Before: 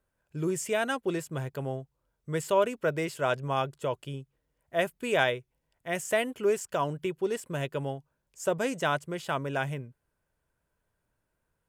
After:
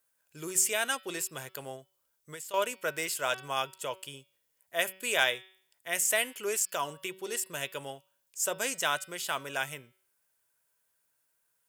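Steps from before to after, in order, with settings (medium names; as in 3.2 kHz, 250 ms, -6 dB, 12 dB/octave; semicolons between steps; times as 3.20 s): tilt EQ +4.5 dB/octave; de-hum 188.9 Hz, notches 28; 1.75–2.54 s: compression 6:1, threshold -39 dBFS, peak gain reduction 14 dB; trim -2.5 dB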